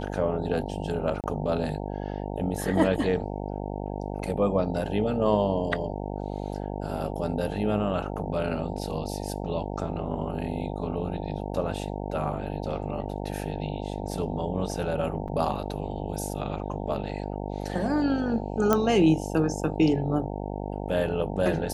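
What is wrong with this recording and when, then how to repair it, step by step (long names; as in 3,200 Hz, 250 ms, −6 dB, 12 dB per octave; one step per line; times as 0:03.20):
mains buzz 50 Hz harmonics 18 −33 dBFS
0:01.21–0:01.24: drop-out 28 ms
0:15.28–0:15.29: drop-out 5.7 ms
0:18.73: click −8 dBFS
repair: click removal
hum removal 50 Hz, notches 18
repair the gap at 0:01.21, 28 ms
repair the gap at 0:15.28, 5.7 ms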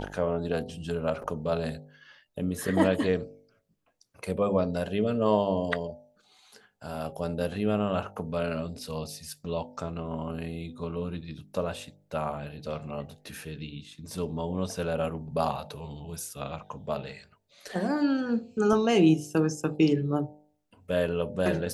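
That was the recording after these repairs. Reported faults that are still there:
none of them is left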